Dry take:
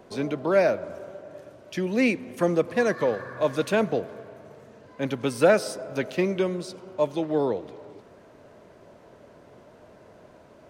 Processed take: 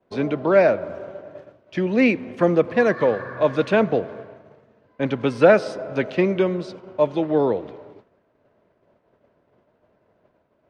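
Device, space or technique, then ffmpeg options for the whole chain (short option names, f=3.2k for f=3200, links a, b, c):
hearing-loss simulation: -af "lowpass=3.3k,agate=range=-33dB:threshold=-39dB:ratio=3:detection=peak,volume=5dB"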